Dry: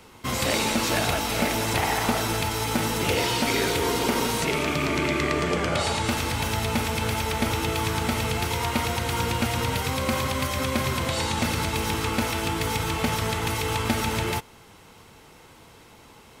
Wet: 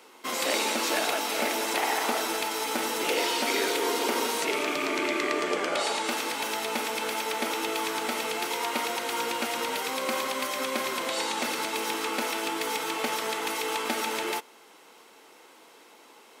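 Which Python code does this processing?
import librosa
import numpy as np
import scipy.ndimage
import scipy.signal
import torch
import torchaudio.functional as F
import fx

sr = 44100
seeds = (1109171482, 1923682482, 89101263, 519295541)

y = scipy.signal.sosfilt(scipy.signal.butter(4, 290.0, 'highpass', fs=sr, output='sos'), x)
y = y * 10.0 ** (-2.0 / 20.0)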